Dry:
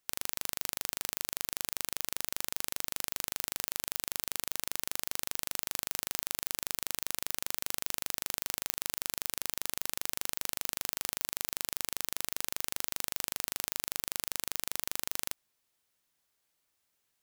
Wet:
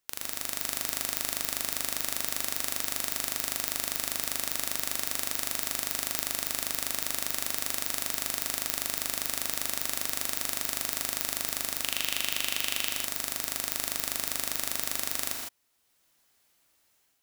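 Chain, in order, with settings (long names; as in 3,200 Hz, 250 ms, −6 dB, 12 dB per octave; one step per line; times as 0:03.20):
0:11.81–0:12.90: parametric band 2,900 Hz +13.5 dB 0.72 octaves
automatic gain control gain up to 9 dB
reverb whose tail is shaped and stops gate 180 ms rising, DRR 1.5 dB
level −1 dB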